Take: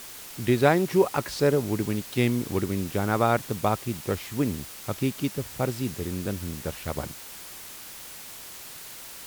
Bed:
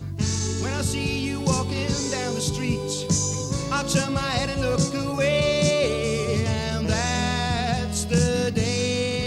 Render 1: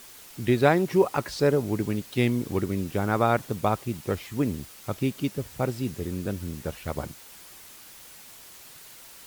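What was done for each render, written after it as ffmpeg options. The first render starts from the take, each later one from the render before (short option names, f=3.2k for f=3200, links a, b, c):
-af "afftdn=nr=6:nf=-42"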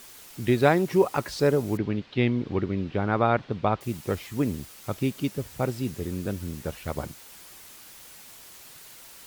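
-filter_complex "[0:a]asettb=1/sr,asplit=3[a][b][c];[a]atrim=end=1.774[d];[b]atrim=start=1.77:end=3.81,asetpts=PTS-STARTPTS,afade=t=in:d=0.004:c=qsin,afade=t=out:st=2.036:d=0.004:c=qsin,lowpass=f=4k:w=0.5412,lowpass=f=4k:w=1.3066[e];[c]atrim=start=3.806[f];[d][e]acrossfade=d=0.004:c1=hsin:c2=qsin[g];[g][f]acrossfade=d=0.004:c1=qsin:c2=hsin"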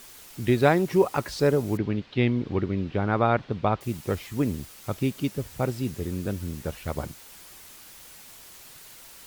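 -af "lowshelf=f=66:g=5.5"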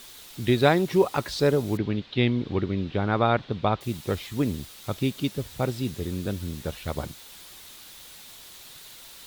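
-af "equalizer=f=3.7k:w=2.7:g=8.5"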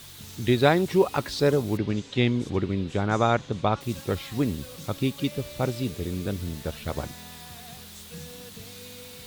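-filter_complex "[1:a]volume=-22dB[a];[0:a][a]amix=inputs=2:normalize=0"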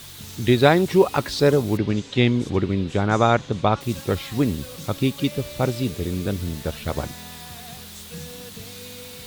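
-af "volume=4.5dB,alimiter=limit=-2dB:level=0:latency=1"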